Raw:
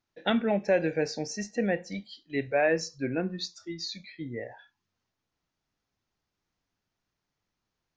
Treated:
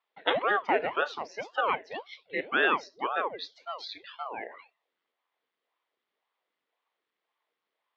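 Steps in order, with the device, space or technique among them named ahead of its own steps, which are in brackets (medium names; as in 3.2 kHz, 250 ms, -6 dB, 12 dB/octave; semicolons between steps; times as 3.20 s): voice changer toy (ring modulator with a swept carrier 560 Hz, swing 85%, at 1.9 Hz; cabinet simulation 400–4000 Hz, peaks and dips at 460 Hz +4 dB, 1.1 kHz +4 dB, 2 kHz +6 dB, 3.3 kHz +5 dB); trim +1.5 dB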